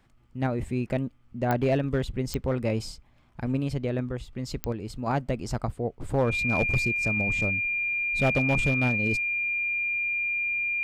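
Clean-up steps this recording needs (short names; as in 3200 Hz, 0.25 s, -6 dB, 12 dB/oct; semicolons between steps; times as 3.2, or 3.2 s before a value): clip repair -16.5 dBFS; de-click; notch 2400 Hz, Q 30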